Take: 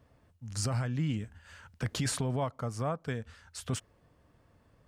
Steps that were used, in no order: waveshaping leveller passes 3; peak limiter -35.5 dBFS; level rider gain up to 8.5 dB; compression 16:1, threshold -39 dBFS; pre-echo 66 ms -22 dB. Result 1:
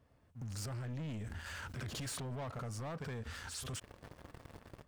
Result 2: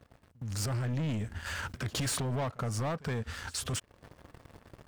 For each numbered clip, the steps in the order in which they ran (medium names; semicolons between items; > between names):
level rider > waveshaping leveller > pre-echo > peak limiter > compression; waveshaping leveller > compression > pre-echo > peak limiter > level rider